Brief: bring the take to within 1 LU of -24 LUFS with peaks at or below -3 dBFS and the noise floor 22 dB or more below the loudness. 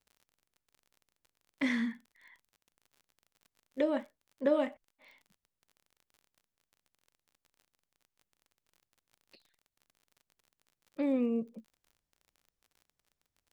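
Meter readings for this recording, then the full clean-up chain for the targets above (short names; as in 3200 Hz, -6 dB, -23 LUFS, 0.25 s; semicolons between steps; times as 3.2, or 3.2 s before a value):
ticks 38/s; loudness -33.0 LUFS; peak -17.5 dBFS; loudness target -24.0 LUFS
-> de-click; gain +9 dB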